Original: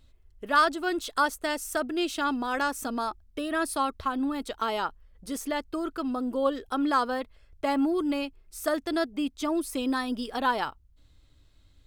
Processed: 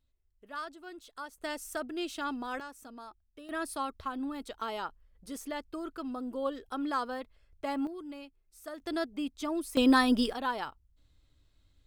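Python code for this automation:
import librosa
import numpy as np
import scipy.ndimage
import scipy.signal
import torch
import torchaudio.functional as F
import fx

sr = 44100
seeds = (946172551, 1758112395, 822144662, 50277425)

y = fx.gain(x, sr, db=fx.steps((0.0, -18.0), (1.38, -7.5), (2.6, -17.0), (3.49, -7.5), (7.87, -15.5), (8.8, -5.5), (9.77, 5.5), (10.33, -7.0)))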